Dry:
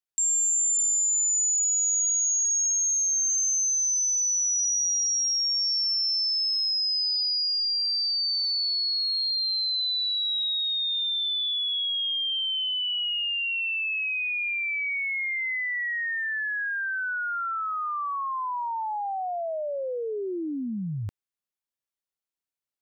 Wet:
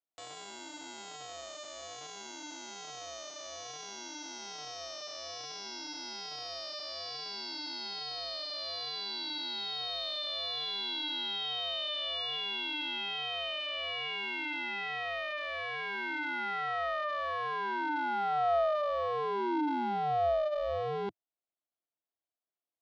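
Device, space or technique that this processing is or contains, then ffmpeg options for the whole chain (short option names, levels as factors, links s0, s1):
ring modulator pedal into a guitar cabinet: -af "aeval=exprs='val(0)*sgn(sin(2*PI*300*n/s))':c=same,highpass=110,equalizer=f=110:t=q:w=4:g=-10,equalizer=f=170:t=q:w=4:g=-9,equalizer=f=320:t=q:w=4:g=6,equalizer=f=680:t=q:w=4:g=10,equalizer=f=1700:t=q:w=4:g=-7,equalizer=f=2500:t=q:w=4:g=-9,lowpass=f=3400:w=0.5412,lowpass=f=3400:w=1.3066,volume=0.708"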